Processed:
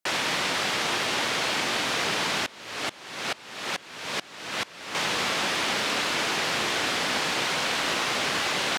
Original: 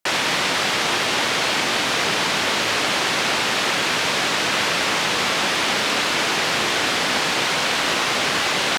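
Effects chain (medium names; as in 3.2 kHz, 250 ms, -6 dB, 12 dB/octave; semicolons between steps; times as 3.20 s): 2.46–4.95 s: sawtooth tremolo in dB swelling 2.3 Hz, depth 24 dB; trim -6 dB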